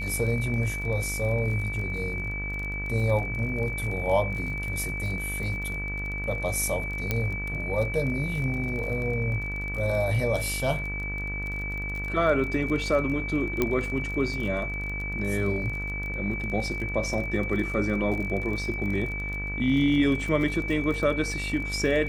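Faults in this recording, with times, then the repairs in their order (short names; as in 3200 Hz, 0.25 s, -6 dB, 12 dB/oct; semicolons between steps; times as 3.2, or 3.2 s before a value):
buzz 50 Hz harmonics 36 -34 dBFS
crackle 28/s -32 dBFS
tone 2300 Hz -32 dBFS
7.11 pop -11 dBFS
13.62 pop -10 dBFS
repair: de-click; de-hum 50 Hz, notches 36; notch 2300 Hz, Q 30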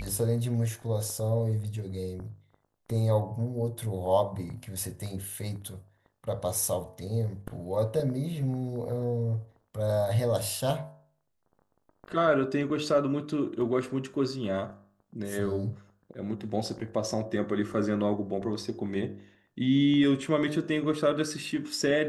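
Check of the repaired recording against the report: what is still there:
13.62 pop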